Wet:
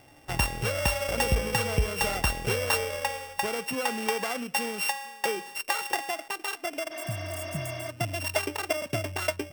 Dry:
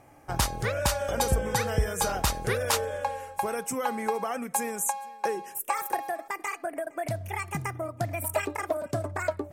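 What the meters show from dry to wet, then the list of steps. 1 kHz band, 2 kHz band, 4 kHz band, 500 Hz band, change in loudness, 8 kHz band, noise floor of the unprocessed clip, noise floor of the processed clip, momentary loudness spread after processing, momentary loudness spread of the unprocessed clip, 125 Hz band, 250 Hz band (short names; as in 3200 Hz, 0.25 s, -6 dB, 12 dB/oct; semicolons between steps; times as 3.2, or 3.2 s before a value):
-2.5 dB, +3.5 dB, +4.5 dB, -1.0 dB, +0.5 dB, -2.0 dB, -52 dBFS, -50 dBFS, 7 LU, 7 LU, 0.0 dB, 0.0 dB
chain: sample sorter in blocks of 16 samples; spectral repair 6.94–7.86, 220–6400 Hz before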